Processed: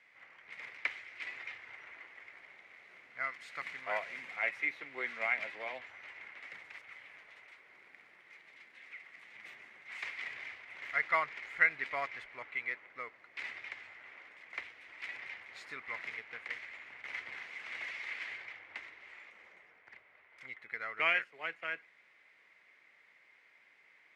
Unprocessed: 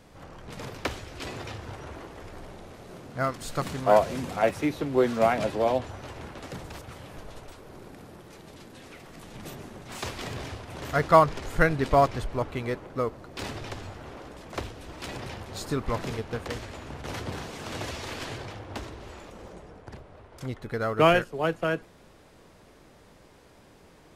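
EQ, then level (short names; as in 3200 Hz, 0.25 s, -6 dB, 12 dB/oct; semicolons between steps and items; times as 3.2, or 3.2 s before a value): band-pass 2100 Hz, Q 8.1; +7.5 dB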